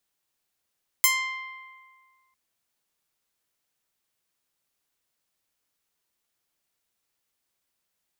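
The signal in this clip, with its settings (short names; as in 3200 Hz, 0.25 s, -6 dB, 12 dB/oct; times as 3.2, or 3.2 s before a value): plucked string C6, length 1.30 s, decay 1.85 s, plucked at 0.24, bright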